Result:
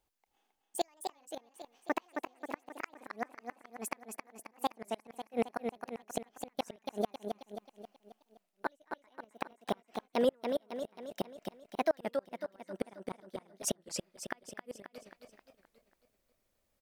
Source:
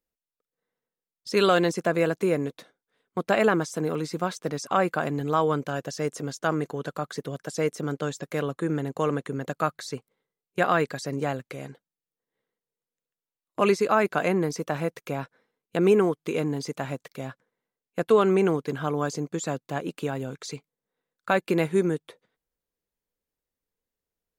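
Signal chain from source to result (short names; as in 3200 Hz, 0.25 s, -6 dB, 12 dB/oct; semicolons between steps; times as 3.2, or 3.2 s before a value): speed glide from 170% -> 120%; reverse; compressor 8:1, threshold -32 dBFS, peak gain reduction 17 dB; reverse; flipped gate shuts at -26 dBFS, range -39 dB; feedback echo 0.268 s, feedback 50%, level -5.5 dB; record warp 33 1/3 rpm, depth 160 cents; gain +8 dB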